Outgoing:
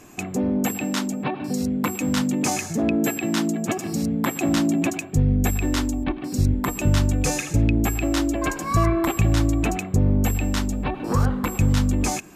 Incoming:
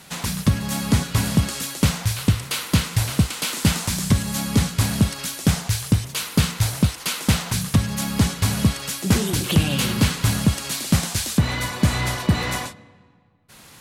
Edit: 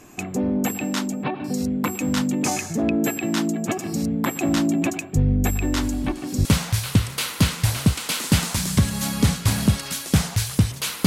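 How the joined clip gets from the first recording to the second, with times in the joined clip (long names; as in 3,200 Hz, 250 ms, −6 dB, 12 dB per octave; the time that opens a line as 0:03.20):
outgoing
0:05.81: mix in incoming from 0:01.14 0.64 s −16.5 dB
0:06.45: continue with incoming from 0:01.78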